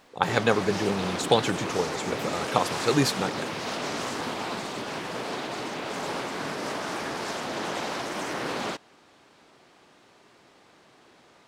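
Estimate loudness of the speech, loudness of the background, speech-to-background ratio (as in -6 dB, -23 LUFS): -27.0 LUFS, -31.5 LUFS, 4.5 dB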